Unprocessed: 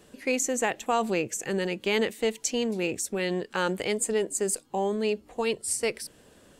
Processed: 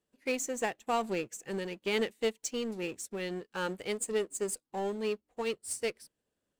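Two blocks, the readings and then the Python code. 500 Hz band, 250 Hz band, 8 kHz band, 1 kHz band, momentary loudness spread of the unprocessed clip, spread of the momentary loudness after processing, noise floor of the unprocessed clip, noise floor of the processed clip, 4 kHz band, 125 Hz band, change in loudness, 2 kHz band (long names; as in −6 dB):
−6.0 dB, −7.0 dB, −8.5 dB, −6.0 dB, 3 LU, 6 LU, −58 dBFS, below −85 dBFS, −6.0 dB, −8.0 dB, −6.5 dB, −6.5 dB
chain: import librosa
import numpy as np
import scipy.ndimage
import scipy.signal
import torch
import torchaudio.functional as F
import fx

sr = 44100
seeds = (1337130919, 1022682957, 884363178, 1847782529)

y = fx.power_curve(x, sr, exponent=0.7)
y = fx.upward_expand(y, sr, threshold_db=-45.0, expansion=2.5)
y = y * 10.0 ** (-5.5 / 20.0)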